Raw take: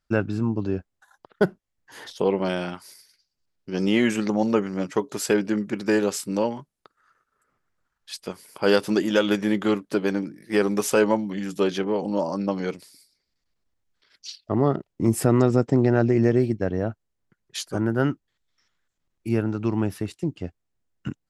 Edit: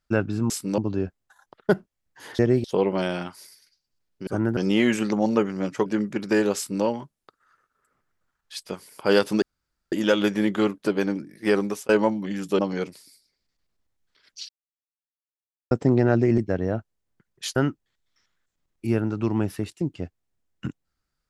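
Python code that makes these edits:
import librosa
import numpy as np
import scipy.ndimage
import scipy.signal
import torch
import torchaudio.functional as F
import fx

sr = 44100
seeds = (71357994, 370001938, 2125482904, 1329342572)

y = fx.edit(x, sr, fx.cut(start_s=5.03, length_s=0.4),
    fx.duplicate(start_s=6.13, length_s=0.28, to_s=0.5),
    fx.insert_room_tone(at_s=8.99, length_s=0.5),
    fx.fade_out_span(start_s=10.65, length_s=0.31),
    fx.cut(start_s=11.66, length_s=0.8),
    fx.silence(start_s=14.36, length_s=1.22),
    fx.move(start_s=16.25, length_s=0.25, to_s=2.11),
    fx.move(start_s=17.68, length_s=0.3, to_s=3.74), tone=tone)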